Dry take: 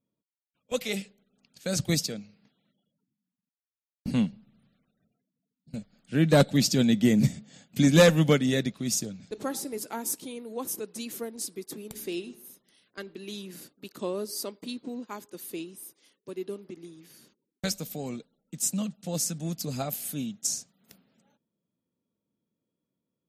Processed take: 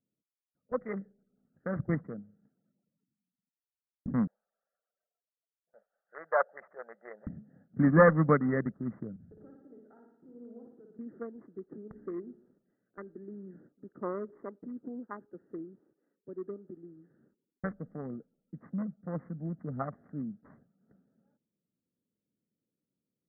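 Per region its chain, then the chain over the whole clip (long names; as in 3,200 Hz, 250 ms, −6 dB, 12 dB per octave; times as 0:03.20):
0:04.27–0:07.27: inverse Chebyshev high-pass filter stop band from 290 Hz + dynamic equaliser 3,300 Hz, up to −5 dB, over −41 dBFS, Q 0.82
0:09.16–0:10.99: downward compressor 12 to 1, threshold −45 dBFS + flutter between parallel walls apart 10 metres, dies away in 0.93 s + multiband upward and downward expander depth 70%
whole clip: adaptive Wiener filter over 41 samples; Chebyshev low-pass filter 2,000 Hz, order 8; parametric band 1,200 Hz +11.5 dB 0.61 octaves; level −3 dB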